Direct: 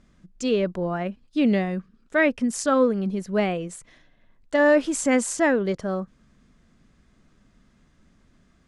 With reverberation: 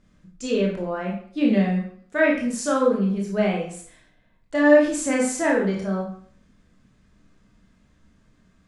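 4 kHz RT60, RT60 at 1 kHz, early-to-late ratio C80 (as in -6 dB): 0.45 s, 0.55 s, 8.5 dB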